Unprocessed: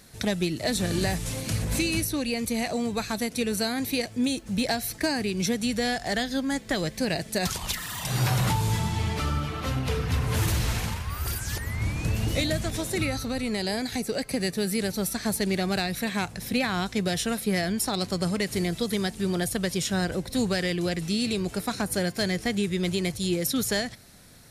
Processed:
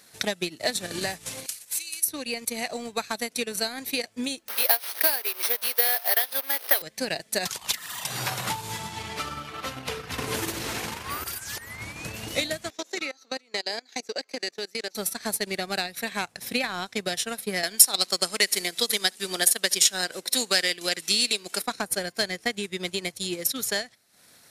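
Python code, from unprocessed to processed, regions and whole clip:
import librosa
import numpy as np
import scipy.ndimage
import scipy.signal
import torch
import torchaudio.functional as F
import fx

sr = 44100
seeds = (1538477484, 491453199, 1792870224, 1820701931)

y = fx.chain(x, sr, fx.highpass(hz=49.0, slope=12),
    fx.pre_emphasis(coefficient=0.97), at=(1.46, 2.08))
y = fx.chain(y, sr, fx.delta_mod(bps=32000, step_db=-28.5),
    fx.highpass(hz=430.0, slope=24),
    fx.resample_bad(factor=3, down='filtered', up='zero_stuff'), at=(4.48, 6.82))
y = fx.chain(y, sr, fx.peak_eq(hz=330.0, db=9.5, octaves=1.2),
    fx.band_squash(depth_pct=70), at=(10.18, 11.24))
y = fx.chain(y, sr, fx.highpass(hz=260.0, slope=24),
    fx.high_shelf_res(hz=7800.0, db=-6.5, q=3.0),
    fx.level_steps(step_db=15), at=(12.7, 14.95))
y = fx.chain(y, sr, fx.highpass(hz=220.0, slope=12),
    fx.high_shelf(hz=2100.0, db=10.0),
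    fx.echo_single(ms=70, db=-19.5), at=(17.63, 21.62))
y = fx.highpass(y, sr, hz=630.0, slope=6)
y = fx.transient(y, sr, attack_db=6, sustain_db=-12)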